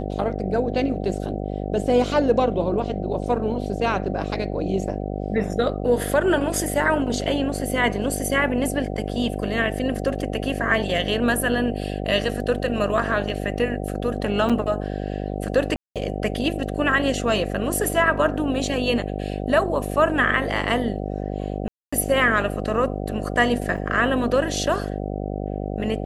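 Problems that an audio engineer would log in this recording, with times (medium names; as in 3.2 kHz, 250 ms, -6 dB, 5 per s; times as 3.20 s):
buzz 50 Hz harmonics 15 -28 dBFS
14.49–14.50 s: dropout 6.3 ms
15.76–15.96 s: dropout 197 ms
21.68–21.93 s: dropout 245 ms
23.77–23.78 s: dropout 6.4 ms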